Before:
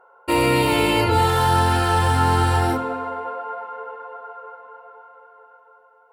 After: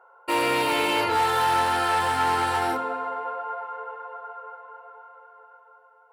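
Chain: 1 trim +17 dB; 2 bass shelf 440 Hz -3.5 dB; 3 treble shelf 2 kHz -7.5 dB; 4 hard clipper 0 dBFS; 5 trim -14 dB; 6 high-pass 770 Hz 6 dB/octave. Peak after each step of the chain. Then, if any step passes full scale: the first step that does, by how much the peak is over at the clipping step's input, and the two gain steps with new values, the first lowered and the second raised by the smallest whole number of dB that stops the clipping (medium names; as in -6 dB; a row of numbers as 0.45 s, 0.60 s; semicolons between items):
+10.5 dBFS, +9.5 dBFS, +8.0 dBFS, 0.0 dBFS, -14.0 dBFS, -12.0 dBFS; step 1, 8.0 dB; step 1 +9 dB, step 5 -6 dB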